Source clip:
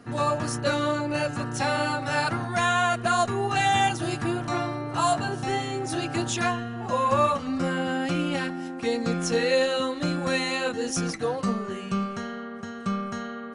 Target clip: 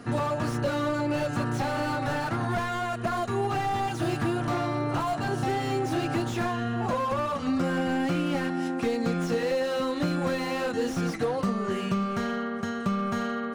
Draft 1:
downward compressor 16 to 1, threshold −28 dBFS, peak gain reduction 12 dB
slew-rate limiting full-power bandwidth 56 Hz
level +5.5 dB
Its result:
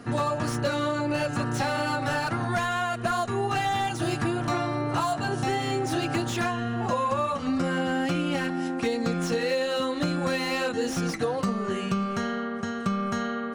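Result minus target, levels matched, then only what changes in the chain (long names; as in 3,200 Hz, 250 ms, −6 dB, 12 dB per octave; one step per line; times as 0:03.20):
slew-rate limiting: distortion −8 dB
change: slew-rate limiting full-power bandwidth 25 Hz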